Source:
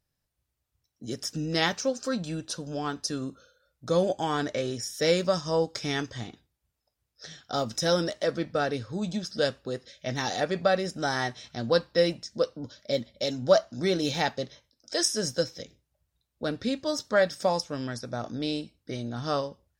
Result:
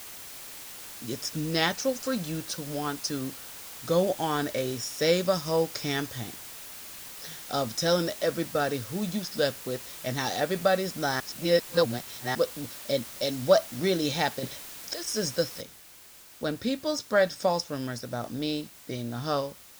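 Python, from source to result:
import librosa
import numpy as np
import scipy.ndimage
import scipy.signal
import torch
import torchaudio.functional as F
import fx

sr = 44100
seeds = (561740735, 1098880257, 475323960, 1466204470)

y = fx.over_compress(x, sr, threshold_db=-35.0, ratio=-1.0, at=(14.39, 15.08))
y = fx.noise_floor_step(y, sr, seeds[0], at_s=15.61, before_db=-43, after_db=-51, tilt_db=0.0)
y = fx.edit(y, sr, fx.reverse_span(start_s=11.2, length_s=1.15), tone=tone)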